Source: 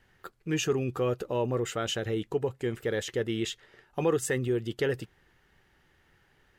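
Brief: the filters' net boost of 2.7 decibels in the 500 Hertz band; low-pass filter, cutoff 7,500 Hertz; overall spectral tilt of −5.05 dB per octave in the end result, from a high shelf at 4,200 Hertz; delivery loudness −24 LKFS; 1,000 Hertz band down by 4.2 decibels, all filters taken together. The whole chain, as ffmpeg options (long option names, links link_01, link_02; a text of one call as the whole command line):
ffmpeg -i in.wav -af "lowpass=7500,equalizer=frequency=500:width_type=o:gain=4.5,equalizer=frequency=1000:width_type=o:gain=-7.5,highshelf=frequency=4200:gain=4,volume=5dB" out.wav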